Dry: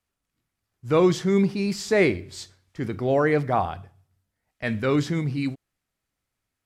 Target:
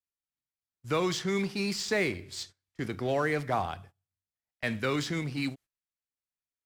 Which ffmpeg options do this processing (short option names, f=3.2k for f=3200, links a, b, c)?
-filter_complex "[0:a]agate=range=-18dB:threshold=-45dB:ratio=16:detection=peak,tiltshelf=f=1.4k:g=-4,acrossover=split=240|660|6100[a][b][c][d];[a]acompressor=threshold=-34dB:ratio=4[e];[b]acompressor=threshold=-31dB:ratio=4[f];[c]acompressor=threshold=-28dB:ratio=4[g];[d]acompressor=threshold=-45dB:ratio=4[h];[e][f][g][h]amix=inputs=4:normalize=0,asplit=2[i][j];[j]acrusher=bits=4:mix=0:aa=0.5,volume=-12dB[k];[i][k]amix=inputs=2:normalize=0,volume=-3dB"